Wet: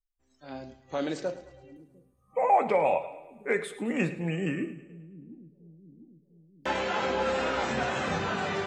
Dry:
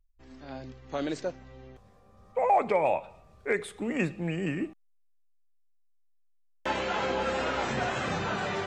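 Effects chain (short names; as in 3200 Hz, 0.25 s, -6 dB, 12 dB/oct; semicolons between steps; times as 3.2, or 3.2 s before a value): spectral noise reduction 21 dB; split-band echo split 310 Hz, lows 0.702 s, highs 0.107 s, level -15.5 dB; on a send at -9 dB: reverb RT60 0.45 s, pre-delay 4 ms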